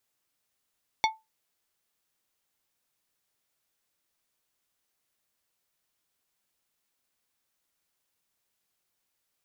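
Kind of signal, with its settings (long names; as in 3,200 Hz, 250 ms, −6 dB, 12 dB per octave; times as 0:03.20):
struck glass plate, lowest mode 881 Hz, decay 0.21 s, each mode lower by 3 dB, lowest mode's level −18 dB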